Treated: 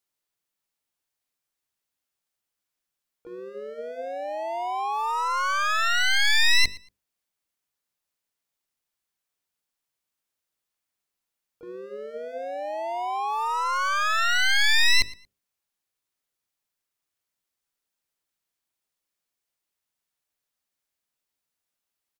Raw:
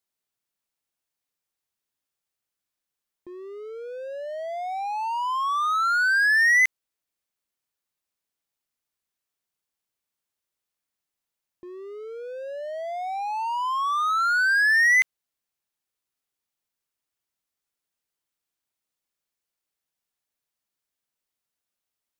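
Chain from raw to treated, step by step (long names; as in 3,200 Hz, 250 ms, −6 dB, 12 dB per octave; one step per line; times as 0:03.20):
wavefolder on the positive side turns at −24.5 dBFS
mains-hum notches 50/100/150/200/250/300/350/400/450/500 Hz
repeating echo 115 ms, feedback 20%, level −21 dB
pitch-shifted copies added −12 semitones −18 dB, +5 semitones −4 dB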